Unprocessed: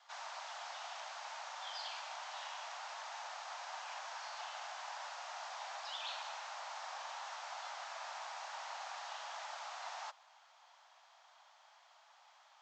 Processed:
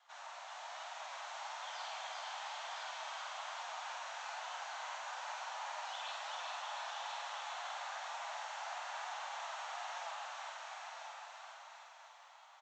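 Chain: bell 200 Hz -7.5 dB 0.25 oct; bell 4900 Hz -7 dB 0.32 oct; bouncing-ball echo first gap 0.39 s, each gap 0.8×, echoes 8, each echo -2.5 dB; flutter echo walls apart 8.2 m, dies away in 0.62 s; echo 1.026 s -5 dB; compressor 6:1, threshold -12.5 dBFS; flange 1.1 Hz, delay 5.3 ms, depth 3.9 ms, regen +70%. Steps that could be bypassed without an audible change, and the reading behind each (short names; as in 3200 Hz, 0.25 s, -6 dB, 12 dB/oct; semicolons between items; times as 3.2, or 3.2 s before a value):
bell 200 Hz: input band starts at 480 Hz; compressor, threshold -12.5 dBFS: input peak -27.0 dBFS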